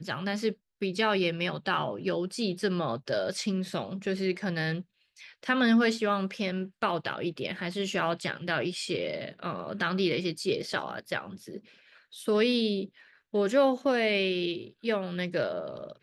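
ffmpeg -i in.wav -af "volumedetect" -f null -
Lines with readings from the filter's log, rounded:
mean_volume: -30.0 dB
max_volume: -11.7 dB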